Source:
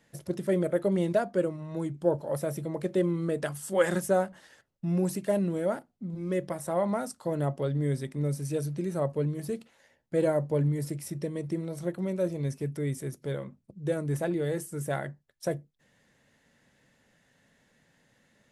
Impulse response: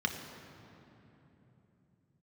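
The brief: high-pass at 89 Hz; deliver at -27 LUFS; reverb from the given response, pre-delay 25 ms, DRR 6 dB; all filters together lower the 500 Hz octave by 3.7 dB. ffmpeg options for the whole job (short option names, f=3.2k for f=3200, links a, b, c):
-filter_complex "[0:a]highpass=89,equalizer=f=500:t=o:g=-4.5,asplit=2[a][b];[1:a]atrim=start_sample=2205,adelay=25[c];[b][c]afir=irnorm=-1:irlink=0,volume=-12.5dB[d];[a][d]amix=inputs=2:normalize=0,volume=4dB"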